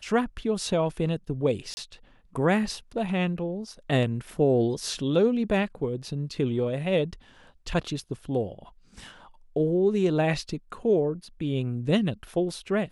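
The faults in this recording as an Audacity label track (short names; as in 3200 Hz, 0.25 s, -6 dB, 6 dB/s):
1.740000	1.770000	gap 30 ms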